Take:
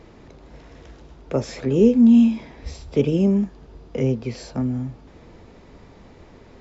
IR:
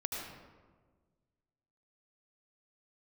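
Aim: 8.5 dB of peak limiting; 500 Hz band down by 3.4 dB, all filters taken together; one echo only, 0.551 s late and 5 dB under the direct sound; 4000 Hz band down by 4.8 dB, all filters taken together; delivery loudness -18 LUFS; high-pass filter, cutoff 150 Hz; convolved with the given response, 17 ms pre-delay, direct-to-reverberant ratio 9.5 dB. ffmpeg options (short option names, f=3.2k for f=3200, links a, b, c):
-filter_complex "[0:a]highpass=150,equalizer=f=500:t=o:g=-4,equalizer=f=4k:t=o:g=-7,alimiter=limit=-15.5dB:level=0:latency=1,aecho=1:1:551:0.562,asplit=2[a][b];[1:a]atrim=start_sample=2205,adelay=17[c];[b][c]afir=irnorm=-1:irlink=0,volume=-12dB[d];[a][d]amix=inputs=2:normalize=0,volume=6.5dB"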